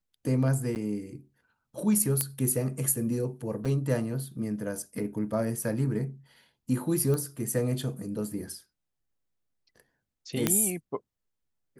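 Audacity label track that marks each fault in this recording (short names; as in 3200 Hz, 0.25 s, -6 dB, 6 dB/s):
0.750000	0.760000	gap 9.4 ms
2.210000	2.210000	pop -9 dBFS
3.650000	3.660000	gap 5.2 ms
7.140000	7.140000	pop -19 dBFS
10.470000	10.470000	pop -7 dBFS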